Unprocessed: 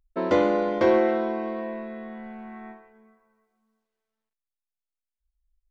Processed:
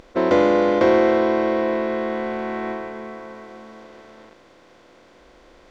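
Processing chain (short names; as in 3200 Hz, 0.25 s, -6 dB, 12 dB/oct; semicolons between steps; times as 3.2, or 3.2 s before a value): per-bin compression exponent 0.4; gain +2 dB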